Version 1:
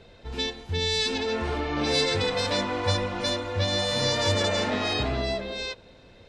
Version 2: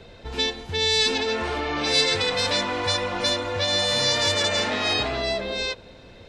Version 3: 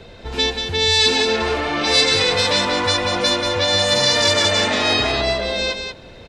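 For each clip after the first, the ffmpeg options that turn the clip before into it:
-filter_complex "[0:a]acrossover=split=370|1500[a][b][c];[a]acompressor=threshold=-39dB:ratio=5[d];[b]alimiter=level_in=4dB:limit=-24dB:level=0:latency=1,volume=-4dB[e];[d][e][c]amix=inputs=3:normalize=0,volume=5.5dB"
-af "aecho=1:1:185:0.501,volume=5dB"

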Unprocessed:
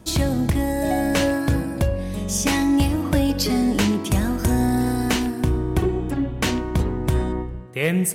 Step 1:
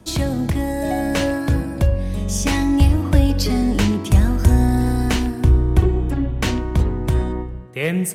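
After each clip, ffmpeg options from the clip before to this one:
-filter_complex "[0:a]highshelf=f=10k:g=-5,acrossover=split=100|850|6400[a][b][c][d];[a]dynaudnorm=f=430:g=9:m=12.5dB[e];[e][b][c][d]amix=inputs=4:normalize=0"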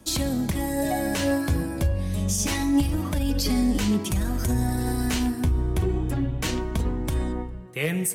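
-af "highshelf=f=5k:g=9.5,alimiter=limit=-11dB:level=0:latency=1:release=40,flanger=delay=3.6:depth=8.5:regen=44:speed=0.28:shape=sinusoidal"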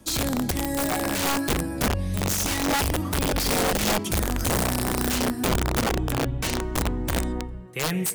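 -af "aeval=exprs='(mod(7.94*val(0)+1,2)-1)/7.94':c=same"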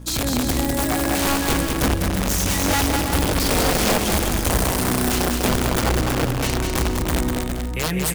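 -filter_complex "[0:a]aeval=exprs='val(0)+0.0126*(sin(2*PI*60*n/s)+sin(2*PI*2*60*n/s)/2+sin(2*PI*3*60*n/s)/3+sin(2*PI*4*60*n/s)/4+sin(2*PI*5*60*n/s)/5)':c=same,asplit=2[a][b];[b]acrusher=bits=6:mix=0:aa=0.000001,volume=-11.5dB[c];[a][c]amix=inputs=2:normalize=0,aecho=1:1:200|330|414.5|469.4|505.1:0.631|0.398|0.251|0.158|0.1"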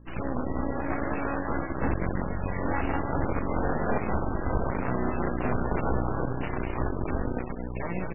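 -af "aeval=exprs='0.376*(cos(1*acos(clip(val(0)/0.376,-1,1)))-cos(1*PI/2))+0.0266*(cos(3*acos(clip(val(0)/0.376,-1,1)))-cos(3*PI/2))+0.075*(cos(6*acos(clip(val(0)/0.376,-1,1)))-cos(6*PI/2))+0.0168*(cos(7*acos(clip(val(0)/0.376,-1,1)))-cos(7*PI/2))':c=same,lowpass=2.3k,volume=-7dB" -ar 12000 -c:a libmp3lame -b:a 8k

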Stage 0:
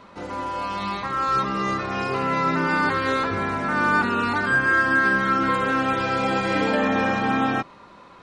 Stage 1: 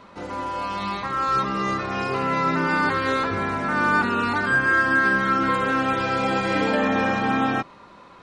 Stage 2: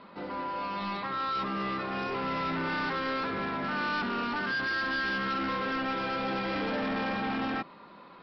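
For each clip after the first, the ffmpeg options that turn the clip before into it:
-af anull
-af "lowshelf=f=130:t=q:w=1.5:g=-8,aresample=11025,asoftclip=type=tanh:threshold=-24.5dB,aresample=44100,volume=-4dB"

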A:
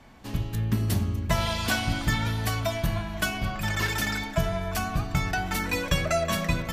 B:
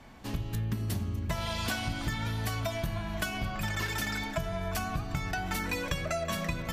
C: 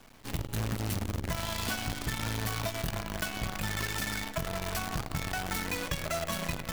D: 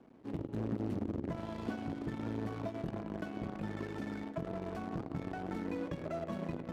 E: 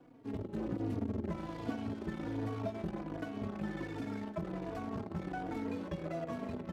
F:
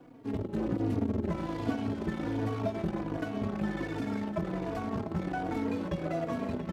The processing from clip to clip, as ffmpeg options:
-af "acompressor=threshold=-29dB:ratio=6"
-af "acrusher=bits=6:dc=4:mix=0:aa=0.000001,volume=-1.5dB"
-af "bandpass=f=310:t=q:w=1.5:csg=0,volume=4dB"
-filter_complex "[0:a]asplit=2[a][b];[b]adelay=3.6,afreqshift=-1.3[c];[a][c]amix=inputs=2:normalize=1,volume=3.5dB"
-af "aecho=1:1:694:0.224,volume=6dB"

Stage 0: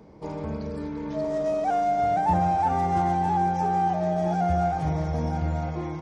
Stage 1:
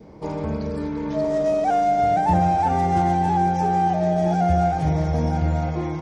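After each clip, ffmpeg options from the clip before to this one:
-af "adynamicequalizer=threshold=0.00794:dfrequency=1100:dqfactor=2.2:tfrequency=1100:tqfactor=2.2:attack=5:release=100:ratio=0.375:range=3.5:mode=cutabove:tftype=bell,volume=5.5dB"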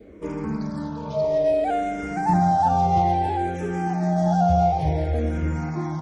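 -filter_complex "[0:a]asplit=2[a][b];[b]afreqshift=-0.58[c];[a][c]amix=inputs=2:normalize=1,volume=1.5dB"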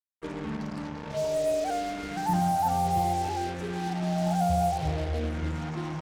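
-af "acrusher=bits=4:mix=0:aa=0.5,volume=-6.5dB"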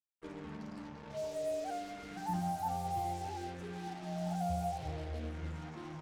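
-af "flanger=delay=8.5:depth=2.8:regen=-43:speed=1:shape=triangular,volume=-7dB"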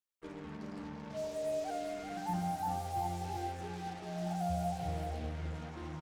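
-af "aecho=1:1:387:0.501"

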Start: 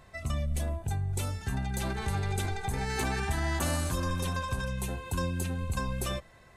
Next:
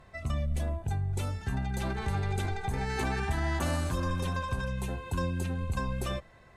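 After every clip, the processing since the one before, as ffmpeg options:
-af "aemphasis=mode=reproduction:type=cd"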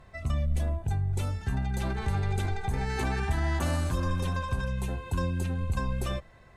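-af "lowshelf=f=100:g=5"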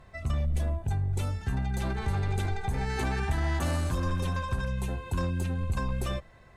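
-af "aeval=exprs='clip(val(0),-1,0.0708)':c=same"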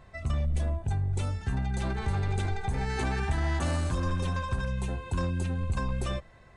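-af "aresample=22050,aresample=44100"

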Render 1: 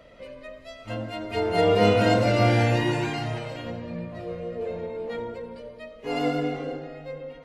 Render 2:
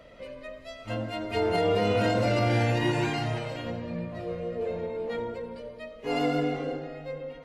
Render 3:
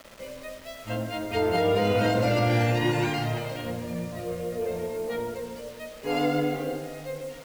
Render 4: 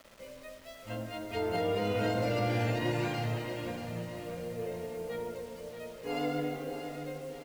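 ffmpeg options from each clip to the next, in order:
-af "alimiter=limit=-16.5dB:level=0:latency=1:release=64"
-af "acrusher=bits=7:mix=0:aa=0.000001,volume=1.5dB"
-af "aecho=1:1:631|1262|1893|2524|3155:0.355|0.163|0.0751|0.0345|0.0159,volume=-8dB"

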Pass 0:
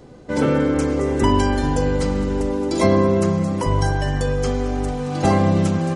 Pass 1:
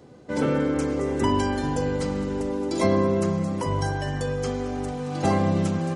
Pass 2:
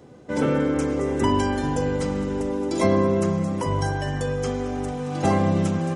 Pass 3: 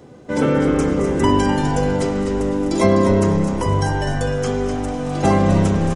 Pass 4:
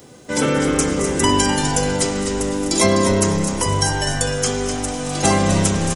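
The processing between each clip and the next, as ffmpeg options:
-af "highpass=82,volume=-5dB"
-af "equalizer=f=4.4k:w=6.4:g=-6,volume=1.5dB"
-filter_complex "[0:a]asplit=5[a][b][c][d][e];[b]adelay=252,afreqshift=-100,volume=-7.5dB[f];[c]adelay=504,afreqshift=-200,volume=-17.7dB[g];[d]adelay=756,afreqshift=-300,volume=-27.8dB[h];[e]adelay=1008,afreqshift=-400,volume=-38dB[i];[a][f][g][h][i]amix=inputs=5:normalize=0,volume=4.5dB"
-af "crystalizer=i=6.5:c=0,volume=-2.5dB"

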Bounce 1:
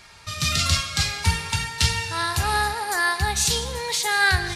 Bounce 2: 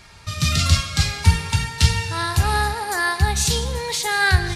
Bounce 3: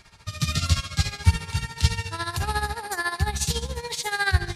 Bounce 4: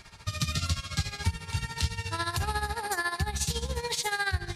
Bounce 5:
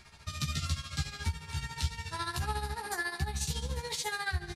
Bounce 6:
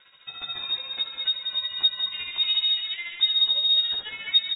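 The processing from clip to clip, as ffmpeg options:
-af "lowshelf=f=350:g=8"
-af "tremolo=f=14:d=0.75,volume=-3dB"
-af "acompressor=threshold=-29dB:ratio=4,volume=2dB"
-filter_complex "[0:a]asplit=2[a][b];[b]adelay=14,volume=-2.5dB[c];[a][c]amix=inputs=2:normalize=0,volume=-6.5dB"
-af "asubboost=boost=11:cutoff=77,lowpass=f=3.2k:t=q:w=0.5098,lowpass=f=3.2k:t=q:w=0.6013,lowpass=f=3.2k:t=q:w=0.9,lowpass=f=3.2k:t=q:w=2.563,afreqshift=-3800,aecho=1:1:186:0.473"

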